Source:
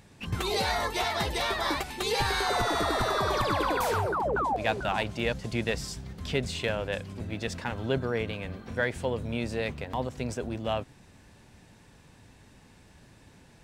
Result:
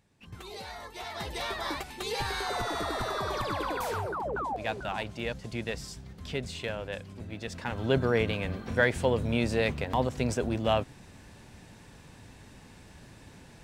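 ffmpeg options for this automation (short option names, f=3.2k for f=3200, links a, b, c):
-af "volume=4dB,afade=t=in:st=0.92:d=0.51:silence=0.354813,afade=t=in:st=7.5:d=0.57:silence=0.354813"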